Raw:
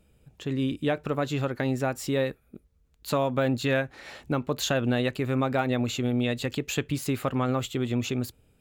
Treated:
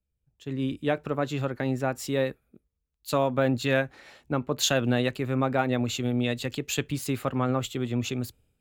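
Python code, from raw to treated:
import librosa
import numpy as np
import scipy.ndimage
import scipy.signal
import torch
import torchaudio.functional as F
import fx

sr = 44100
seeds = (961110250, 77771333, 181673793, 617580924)

y = fx.band_widen(x, sr, depth_pct=70)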